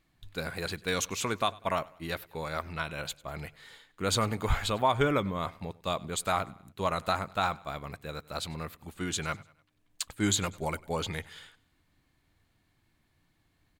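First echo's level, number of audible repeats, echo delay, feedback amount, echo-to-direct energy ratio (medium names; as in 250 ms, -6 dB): -22.5 dB, 2, 98 ms, 45%, -21.5 dB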